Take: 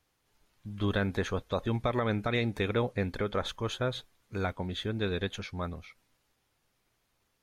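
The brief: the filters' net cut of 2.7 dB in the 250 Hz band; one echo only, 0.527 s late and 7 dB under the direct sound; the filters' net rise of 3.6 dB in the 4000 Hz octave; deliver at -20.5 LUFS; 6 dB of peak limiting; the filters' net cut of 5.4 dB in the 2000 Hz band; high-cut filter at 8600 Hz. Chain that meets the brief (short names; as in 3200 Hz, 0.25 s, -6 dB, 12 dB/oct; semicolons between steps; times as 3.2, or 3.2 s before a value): LPF 8600 Hz; bell 250 Hz -3.5 dB; bell 2000 Hz -9 dB; bell 4000 Hz +7 dB; limiter -24 dBFS; echo 0.527 s -7 dB; gain +14.5 dB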